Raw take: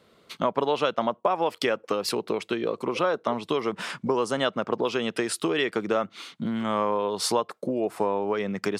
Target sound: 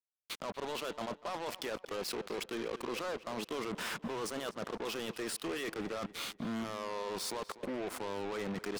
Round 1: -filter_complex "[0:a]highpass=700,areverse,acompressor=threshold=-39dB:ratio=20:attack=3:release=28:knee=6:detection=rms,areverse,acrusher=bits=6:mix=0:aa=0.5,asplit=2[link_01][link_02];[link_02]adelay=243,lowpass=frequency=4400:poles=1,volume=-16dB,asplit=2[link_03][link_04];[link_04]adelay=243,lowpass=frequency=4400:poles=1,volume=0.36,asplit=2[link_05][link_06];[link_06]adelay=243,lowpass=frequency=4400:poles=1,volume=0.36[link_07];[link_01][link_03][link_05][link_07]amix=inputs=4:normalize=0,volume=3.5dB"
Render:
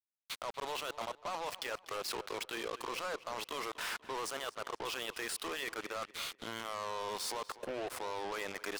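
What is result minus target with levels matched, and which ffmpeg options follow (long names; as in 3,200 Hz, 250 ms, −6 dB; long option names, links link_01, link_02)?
250 Hz band −8.0 dB
-filter_complex "[0:a]highpass=190,areverse,acompressor=threshold=-39dB:ratio=20:attack=3:release=28:knee=6:detection=rms,areverse,acrusher=bits=6:mix=0:aa=0.5,asplit=2[link_01][link_02];[link_02]adelay=243,lowpass=frequency=4400:poles=1,volume=-16dB,asplit=2[link_03][link_04];[link_04]adelay=243,lowpass=frequency=4400:poles=1,volume=0.36,asplit=2[link_05][link_06];[link_06]adelay=243,lowpass=frequency=4400:poles=1,volume=0.36[link_07];[link_01][link_03][link_05][link_07]amix=inputs=4:normalize=0,volume=3.5dB"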